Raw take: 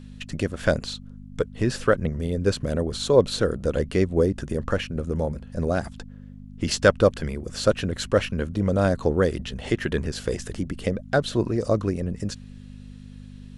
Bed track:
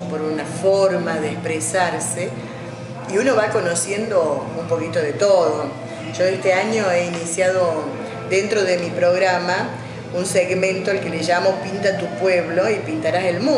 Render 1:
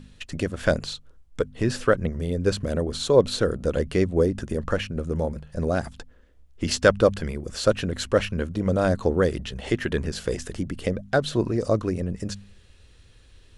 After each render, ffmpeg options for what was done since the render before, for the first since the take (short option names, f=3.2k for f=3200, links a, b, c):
-af "bandreject=f=50:t=h:w=4,bandreject=f=100:t=h:w=4,bandreject=f=150:t=h:w=4,bandreject=f=200:t=h:w=4,bandreject=f=250:t=h:w=4"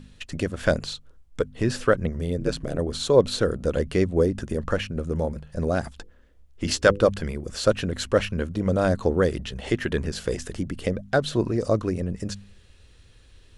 -filter_complex "[0:a]asplit=3[a][b][c];[a]afade=t=out:st=2.37:d=0.02[d];[b]aeval=exprs='val(0)*sin(2*PI*60*n/s)':c=same,afade=t=in:st=2.37:d=0.02,afade=t=out:st=2.77:d=0.02[e];[c]afade=t=in:st=2.77:d=0.02[f];[d][e][f]amix=inputs=3:normalize=0,asettb=1/sr,asplit=3[g][h][i];[g]atrim=end=5.884[j];[h]atrim=start=5.88:end=7.08,asetpts=PTS-STARTPTS,afade=t=in:d=0.004:c=qsin,afade=t=out:st=1.196:d=0.004:c=qsin,bandreject=f=50:t=h:w=6,bandreject=f=100:t=h:w=6,bandreject=f=150:t=h:w=6,bandreject=f=200:t=h:w=6,bandreject=f=250:t=h:w=6,bandreject=f=300:t=h:w=6,bandreject=f=350:t=h:w=6,bandreject=f=400:t=h:w=6,bandreject=f=450:t=h:w=6,bandreject=f=500:t=h:w=6[k];[i]atrim=start=7.076[l];[j][k]acrossfade=d=0.004:c1=hsin:c2=qsin[m];[m][l]acrossfade=d=0.004:c1=qsin:c2=hsin"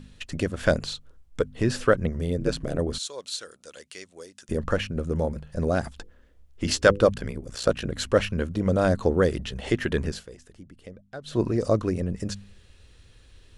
-filter_complex "[0:a]asettb=1/sr,asplit=3[a][b][c];[a]atrim=end=2.984[d];[b]atrim=start=2.98:end=4.49,asetpts=PTS-STARTPTS,afade=t=in:d=0.004:c=qsin,afade=t=out:st=1.506:d=0.004:c=qsin,bandpass=f=7.3k:t=q:w=0.78[e];[c]atrim=start=4.486[f];[d][e]acrossfade=d=0.004:c1=hsin:c2=qsin[g];[g][f]acrossfade=d=0.004:c1=qsin:c2=hsin,asplit=3[h][i][j];[h]afade=t=out:st=7.13:d=0.02[k];[i]aeval=exprs='val(0)*sin(2*PI*30*n/s)':c=same,afade=t=in:st=7.13:d=0.02,afade=t=out:st=7.96:d=0.02[l];[j]afade=t=in:st=7.96:d=0.02[m];[k][l][m]amix=inputs=3:normalize=0,asplit=3[n][o][p];[n]atrim=end=10.26,asetpts=PTS-STARTPTS,afade=t=out:st=10.09:d=0.17:silence=0.133352[q];[o]atrim=start=10.26:end=11.24,asetpts=PTS-STARTPTS,volume=-17.5dB[r];[p]atrim=start=11.24,asetpts=PTS-STARTPTS,afade=t=in:d=0.17:silence=0.133352[s];[q][r][s]concat=n=3:v=0:a=1"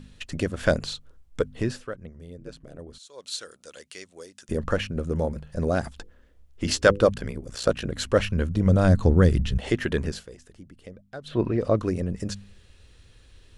-filter_complex "[0:a]asettb=1/sr,asplit=3[a][b][c];[a]atrim=end=8.064[d];[b]atrim=start=8.06:end=9.58,asetpts=PTS-STARTPTS,afade=t=in:d=0.004:c=qsin,afade=t=out:st=1.516:d=0.004:c=qsin,asubboost=boost=8.5:cutoff=220[e];[c]atrim=start=9.576[f];[d][e]acrossfade=d=0.004:c1=hsin:c2=qsin[g];[g][f]acrossfade=d=0.004:c1=qsin:c2=hsin,asettb=1/sr,asplit=3[h][i][j];[h]atrim=end=11.284[k];[i]atrim=start=11.28:end=11.77,asetpts=PTS-STARTPTS,afade=t=in:d=0.004:c=qsin,afade=t=out:st=0.486:d=0.004:c=qsin,highshelf=f=4.3k:t=q:w=1.5:g=-12[l];[j]atrim=start=11.766[m];[k][l]acrossfade=d=0.004:c1=hsin:c2=qsin[n];[n][m]acrossfade=d=0.004:c1=qsin:c2=hsin,asplit=3[o][p][q];[o]atrim=end=1.83,asetpts=PTS-STARTPTS,afade=t=out:st=1.56:d=0.27:silence=0.16788[r];[p]atrim=start=1.83:end=3.07,asetpts=PTS-STARTPTS,volume=-15.5dB[s];[q]atrim=start=3.07,asetpts=PTS-STARTPTS,afade=t=in:d=0.27:silence=0.16788[t];[r][s][t]concat=n=3:v=0:a=1"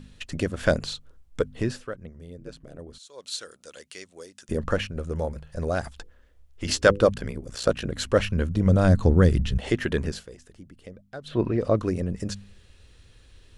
-filter_complex "[0:a]asettb=1/sr,asplit=3[a][b][c];[a]atrim=end=4.864[d];[b]atrim=start=4.86:end=6.69,asetpts=PTS-STARTPTS,afade=t=in:d=0.004:c=qsin,afade=t=out:st=1.826:d=0.004:c=qsin,equalizer=f=230:w=0.81:g=-6.5[e];[c]atrim=start=6.686[f];[d][e]acrossfade=d=0.004:c1=hsin:c2=qsin[g];[g][f]acrossfade=d=0.004:c1=qsin:c2=hsin"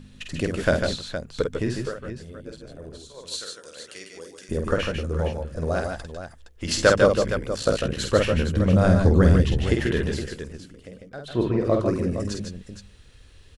-af "aecho=1:1:49|148|163|465:0.562|0.501|0.299|0.316"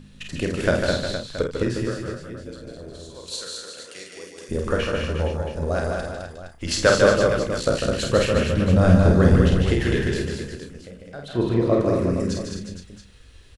-filter_complex "[0:a]asplit=2[a][b];[b]adelay=34,volume=-8dB[c];[a][c]amix=inputs=2:normalize=0,aecho=1:1:209:0.631"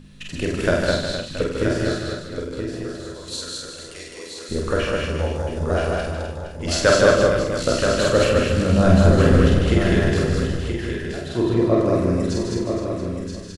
-filter_complex "[0:a]asplit=2[a][b];[b]adelay=46,volume=-4dB[c];[a][c]amix=inputs=2:normalize=0,aecho=1:1:976:0.447"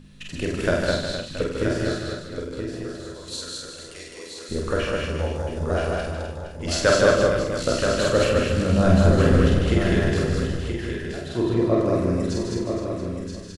-af "volume=-2.5dB"